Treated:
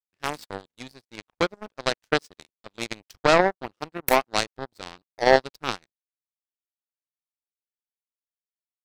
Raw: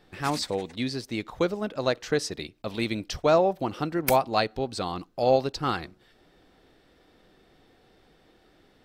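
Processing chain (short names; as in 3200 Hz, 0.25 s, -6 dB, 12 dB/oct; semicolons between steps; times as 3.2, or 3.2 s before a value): power-law curve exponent 3; maximiser +19 dB; gain -1 dB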